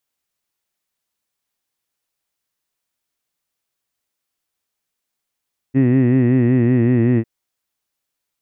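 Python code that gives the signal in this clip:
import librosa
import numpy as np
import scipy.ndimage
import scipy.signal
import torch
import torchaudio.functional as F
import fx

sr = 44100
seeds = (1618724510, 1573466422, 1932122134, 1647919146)

y = fx.formant_vowel(sr, seeds[0], length_s=1.5, hz=129.0, glide_st=-1.5, vibrato_hz=5.3, vibrato_st=0.9, f1_hz=300.0, f2_hz=1900.0, f3_hz=2600.0)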